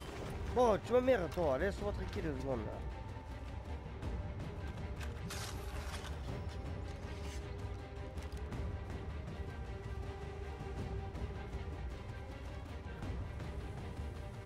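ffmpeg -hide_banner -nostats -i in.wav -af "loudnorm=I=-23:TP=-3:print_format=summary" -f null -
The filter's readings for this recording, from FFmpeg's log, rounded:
Input Integrated:    -41.7 LUFS
Input True Peak:     -19.2 dBTP
Input LRA:             7.0 LU
Input Threshold:     -51.7 LUFS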